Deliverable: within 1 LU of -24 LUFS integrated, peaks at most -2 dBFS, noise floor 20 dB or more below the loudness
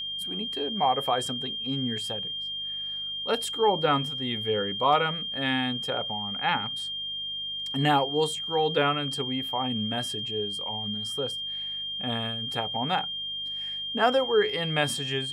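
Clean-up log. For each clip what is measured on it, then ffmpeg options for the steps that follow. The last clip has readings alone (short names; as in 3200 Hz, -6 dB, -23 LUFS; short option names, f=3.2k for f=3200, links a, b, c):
hum 50 Hz; harmonics up to 200 Hz; hum level -56 dBFS; steady tone 3200 Hz; tone level -31 dBFS; loudness -27.5 LUFS; peak -10.5 dBFS; loudness target -24.0 LUFS
-> -af "bandreject=f=50:t=h:w=4,bandreject=f=100:t=h:w=4,bandreject=f=150:t=h:w=4,bandreject=f=200:t=h:w=4"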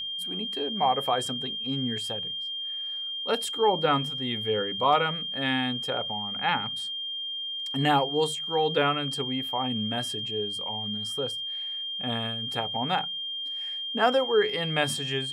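hum none; steady tone 3200 Hz; tone level -31 dBFS
-> -af "bandreject=f=3.2k:w=30"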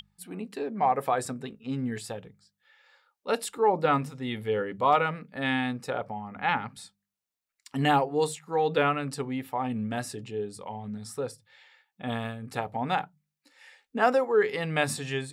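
steady tone none; loudness -29.0 LUFS; peak -11.0 dBFS; loudness target -24.0 LUFS
-> -af "volume=5dB"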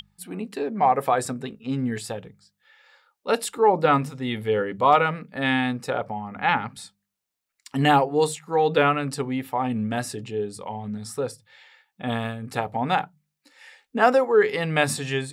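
loudness -24.0 LUFS; peak -6.0 dBFS; noise floor -81 dBFS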